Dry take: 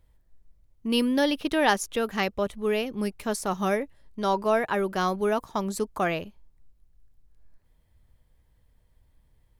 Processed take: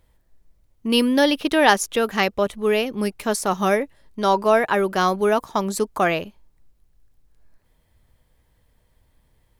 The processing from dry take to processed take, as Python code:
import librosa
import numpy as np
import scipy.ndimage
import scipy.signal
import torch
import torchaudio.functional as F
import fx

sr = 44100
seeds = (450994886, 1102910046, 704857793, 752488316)

y = fx.low_shelf(x, sr, hz=150.0, db=-7.5)
y = y * 10.0 ** (7.0 / 20.0)